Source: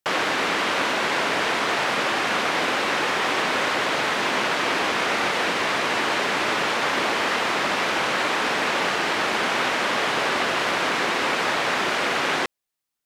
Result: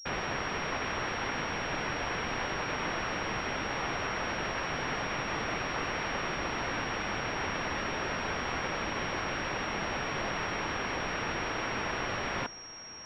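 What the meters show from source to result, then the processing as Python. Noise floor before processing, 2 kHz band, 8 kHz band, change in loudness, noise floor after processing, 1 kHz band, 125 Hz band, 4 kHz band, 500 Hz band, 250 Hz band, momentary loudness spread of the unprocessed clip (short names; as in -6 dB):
-30 dBFS, -11.0 dB, -13.0 dB, -11.0 dB, -37 dBFS, -11.0 dB, 0.0 dB, -13.0 dB, -10.5 dB, -8.0 dB, 0 LU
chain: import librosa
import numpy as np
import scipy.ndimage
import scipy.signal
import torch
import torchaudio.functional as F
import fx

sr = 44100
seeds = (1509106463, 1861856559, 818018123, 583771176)

y = scipy.signal.sosfilt(scipy.signal.butter(2, 140.0, 'highpass', fs=sr, output='sos'), x)
y = fx.low_shelf(y, sr, hz=480.0, db=4.5)
y = fx.fixed_phaser(y, sr, hz=860.0, stages=6)
y = fx.whisperise(y, sr, seeds[0])
y = (np.mod(10.0 ** (26.0 / 20.0) * y + 1.0, 2.0) - 1.0) / 10.0 ** (26.0 / 20.0)
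y = fx.air_absorb(y, sr, metres=110.0)
y = fx.echo_feedback(y, sr, ms=1142, feedback_pct=58, wet_db=-19)
y = fx.pwm(y, sr, carrier_hz=5600.0)
y = y * 10.0 ** (3.0 / 20.0)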